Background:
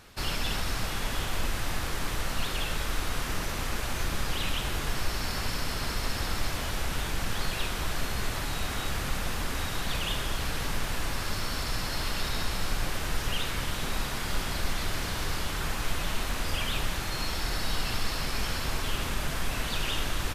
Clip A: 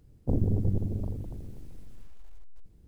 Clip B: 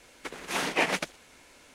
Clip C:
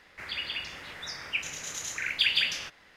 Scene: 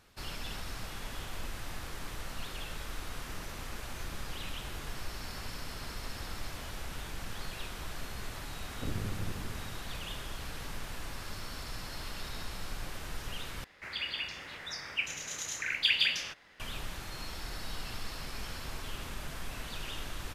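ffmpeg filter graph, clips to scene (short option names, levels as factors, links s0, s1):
-filter_complex "[0:a]volume=0.316[s0];[1:a]aeval=exprs='max(val(0),0)':c=same[s1];[s0]asplit=2[s2][s3];[s2]atrim=end=13.644[s4];[3:a]atrim=end=2.96,asetpts=PTS-STARTPTS,volume=0.794[s5];[s3]atrim=start=16.596[s6];[s1]atrim=end=2.87,asetpts=PTS-STARTPTS,volume=0.299,afade=t=in:d=0.004:c=hsin,afade=t=out:st=2.866:d=0.004:c=hsin,adelay=8540[s7];[s4][s5]acrossfade=d=0.004:c1=hsin:c2=hsin[s8];[s8][s6]acrossfade=d=0.004:c1=hsin:c2=hsin[s9];[s9][s7]amix=inputs=2:normalize=0"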